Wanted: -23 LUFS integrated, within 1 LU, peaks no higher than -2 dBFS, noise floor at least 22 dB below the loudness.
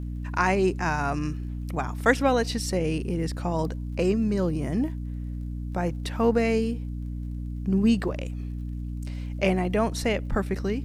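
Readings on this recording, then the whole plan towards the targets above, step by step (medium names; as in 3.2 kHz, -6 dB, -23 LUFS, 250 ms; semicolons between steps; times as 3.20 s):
tick rate 39 per s; hum 60 Hz; highest harmonic 300 Hz; hum level -30 dBFS; loudness -27.0 LUFS; peak level -7.0 dBFS; loudness target -23.0 LUFS
-> de-click; de-hum 60 Hz, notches 5; trim +4 dB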